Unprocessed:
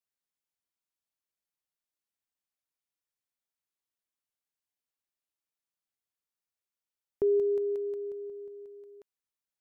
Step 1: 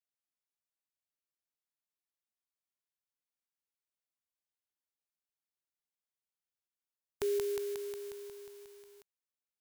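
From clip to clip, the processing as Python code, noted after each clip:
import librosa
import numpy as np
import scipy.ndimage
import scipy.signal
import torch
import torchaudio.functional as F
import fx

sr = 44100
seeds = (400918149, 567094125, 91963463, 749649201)

y = fx.envelope_flatten(x, sr, power=0.3)
y = F.gain(torch.from_numpy(y), -7.0).numpy()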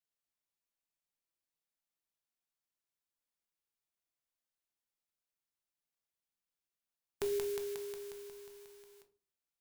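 y = fx.room_shoebox(x, sr, seeds[0], volume_m3=220.0, walls='furnished', distance_m=0.76)
y = F.gain(torch.from_numpy(y), -1.0).numpy()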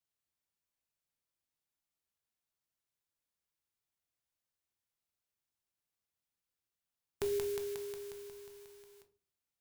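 y = fx.peak_eq(x, sr, hz=91.0, db=8.5, octaves=1.3)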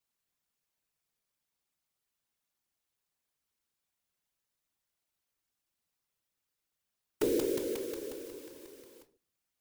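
y = fx.whisperise(x, sr, seeds[1])
y = F.gain(torch.from_numpy(y), 4.5).numpy()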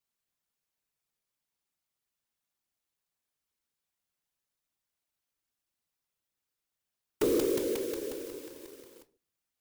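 y = fx.leveller(x, sr, passes=1)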